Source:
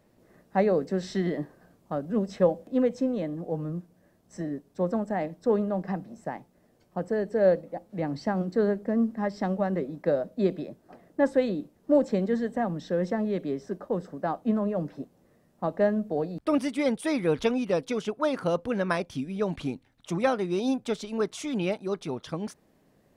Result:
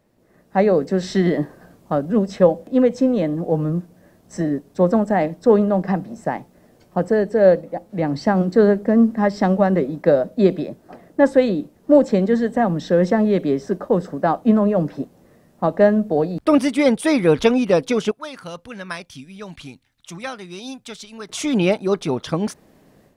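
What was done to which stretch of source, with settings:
18.11–21.29 passive tone stack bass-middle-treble 5-5-5
whole clip: AGC gain up to 11.5 dB

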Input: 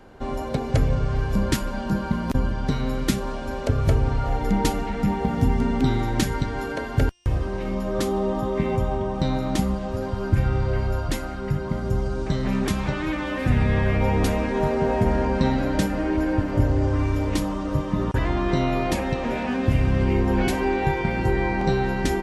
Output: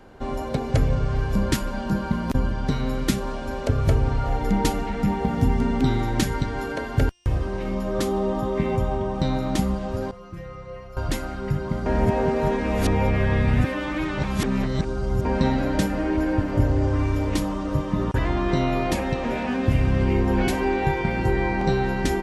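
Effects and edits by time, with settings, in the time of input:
10.11–10.97 metallic resonator 170 Hz, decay 0.25 s, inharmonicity 0.002
11.86–15.25 reverse

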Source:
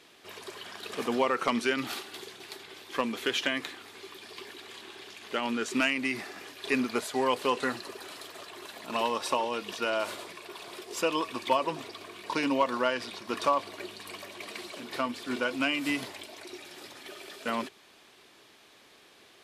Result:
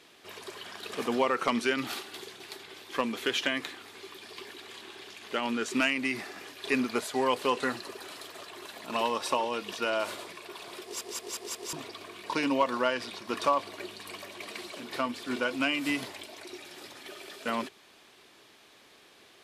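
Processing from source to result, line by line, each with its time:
10.83 stutter in place 0.18 s, 5 plays

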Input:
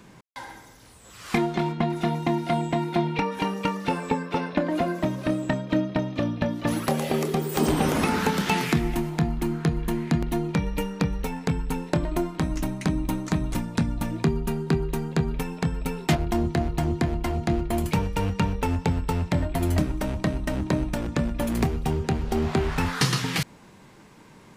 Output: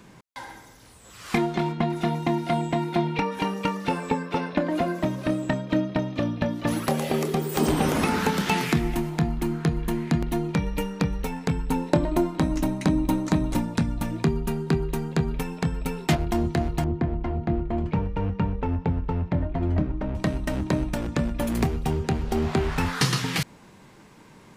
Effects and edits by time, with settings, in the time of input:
11.69–13.74 small resonant body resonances 280/560/860/3900 Hz, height 6 dB, ringing for 20 ms
16.84–20.15 tape spacing loss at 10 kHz 38 dB

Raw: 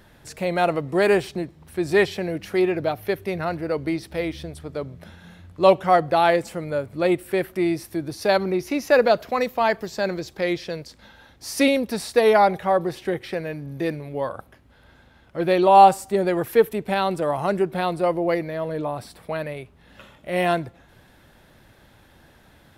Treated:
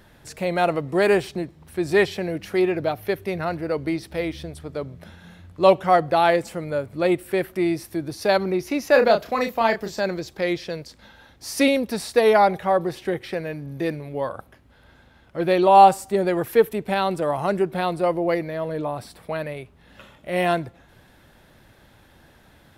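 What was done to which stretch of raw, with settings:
8.91–10.01 doubler 31 ms -6 dB

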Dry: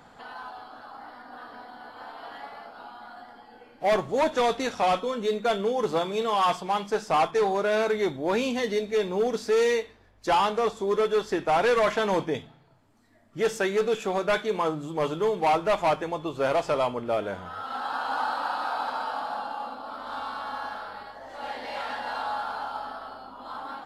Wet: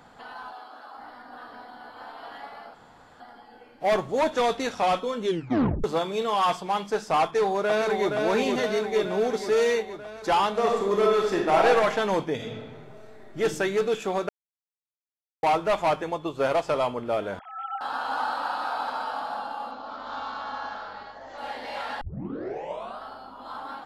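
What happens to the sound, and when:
0.53–0.98 HPF 300 Hz
2.74–3.2 room tone
5.24 tape stop 0.60 s
7.22–8.15 echo throw 0.47 s, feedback 70%, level -4 dB
10.5–11.67 reverb throw, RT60 1 s, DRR 0 dB
12.35–13.39 reverb throw, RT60 1.4 s, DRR -6 dB
14.29–15.43 mute
16.06–16.71 transient shaper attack +2 dB, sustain -3 dB
17.39–17.81 sine-wave speech
19.71–21.38 careless resampling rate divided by 3×, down none, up filtered
22.01 tape start 1.02 s

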